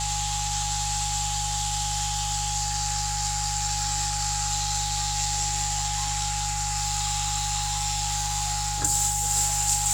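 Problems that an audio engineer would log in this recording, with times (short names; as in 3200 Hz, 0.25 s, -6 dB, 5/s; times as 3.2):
hum 50 Hz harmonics 3 -33 dBFS
tone 830 Hz -31 dBFS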